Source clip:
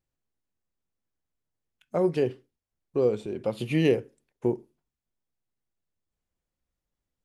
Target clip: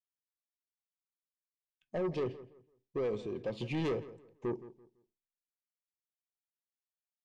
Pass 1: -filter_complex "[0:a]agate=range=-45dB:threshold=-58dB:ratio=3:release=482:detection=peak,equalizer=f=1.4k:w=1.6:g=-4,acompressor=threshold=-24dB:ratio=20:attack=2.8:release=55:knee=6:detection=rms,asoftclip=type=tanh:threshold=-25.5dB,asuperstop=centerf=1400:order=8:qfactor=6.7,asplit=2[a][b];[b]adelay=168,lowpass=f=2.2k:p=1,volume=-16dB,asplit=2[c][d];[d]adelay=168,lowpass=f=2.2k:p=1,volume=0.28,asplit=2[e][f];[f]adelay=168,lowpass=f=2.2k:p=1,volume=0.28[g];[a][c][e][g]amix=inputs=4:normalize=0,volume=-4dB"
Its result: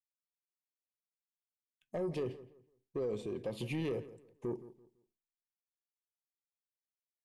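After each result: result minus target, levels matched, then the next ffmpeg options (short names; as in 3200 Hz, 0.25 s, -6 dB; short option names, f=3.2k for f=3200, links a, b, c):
compressor: peak gain reduction +10.5 dB; 8000 Hz band +6.0 dB
-filter_complex "[0:a]agate=range=-45dB:threshold=-58dB:ratio=3:release=482:detection=peak,equalizer=f=1.4k:w=1.6:g=-4,asoftclip=type=tanh:threshold=-25.5dB,asuperstop=centerf=1400:order=8:qfactor=6.7,asplit=2[a][b];[b]adelay=168,lowpass=f=2.2k:p=1,volume=-16dB,asplit=2[c][d];[d]adelay=168,lowpass=f=2.2k:p=1,volume=0.28,asplit=2[e][f];[f]adelay=168,lowpass=f=2.2k:p=1,volume=0.28[g];[a][c][e][g]amix=inputs=4:normalize=0,volume=-4dB"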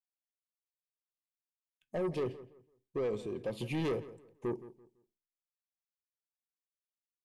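8000 Hz band +4.5 dB
-filter_complex "[0:a]agate=range=-45dB:threshold=-58dB:ratio=3:release=482:detection=peak,lowpass=f=6.4k:w=0.5412,lowpass=f=6.4k:w=1.3066,equalizer=f=1.4k:w=1.6:g=-4,asoftclip=type=tanh:threshold=-25.5dB,asuperstop=centerf=1400:order=8:qfactor=6.7,asplit=2[a][b];[b]adelay=168,lowpass=f=2.2k:p=1,volume=-16dB,asplit=2[c][d];[d]adelay=168,lowpass=f=2.2k:p=1,volume=0.28,asplit=2[e][f];[f]adelay=168,lowpass=f=2.2k:p=1,volume=0.28[g];[a][c][e][g]amix=inputs=4:normalize=0,volume=-4dB"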